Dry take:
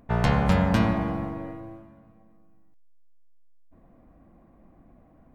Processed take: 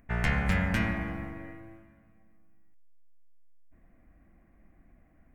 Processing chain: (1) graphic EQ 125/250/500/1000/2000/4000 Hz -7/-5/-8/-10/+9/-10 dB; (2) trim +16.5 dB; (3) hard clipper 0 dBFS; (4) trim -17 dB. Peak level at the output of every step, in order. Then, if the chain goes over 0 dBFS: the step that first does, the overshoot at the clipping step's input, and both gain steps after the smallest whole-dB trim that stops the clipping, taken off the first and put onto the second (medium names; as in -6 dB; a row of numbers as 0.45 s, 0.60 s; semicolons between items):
-12.0 dBFS, +4.5 dBFS, 0.0 dBFS, -17.0 dBFS; step 2, 4.5 dB; step 2 +11.5 dB, step 4 -12 dB